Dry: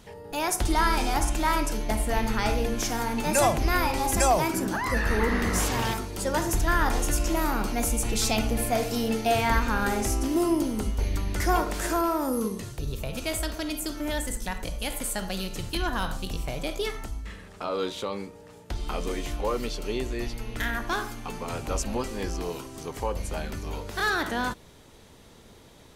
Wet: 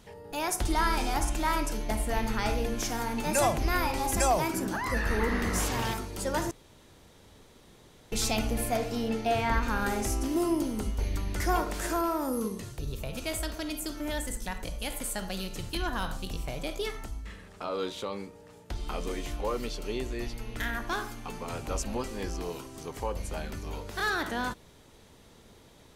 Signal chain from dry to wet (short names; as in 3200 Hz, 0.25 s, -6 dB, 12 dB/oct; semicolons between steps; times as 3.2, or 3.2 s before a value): 6.51–8.12 room tone; 8.77–9.63 high shelf 6400 Hz -11.5 dB; gain -3.5 dB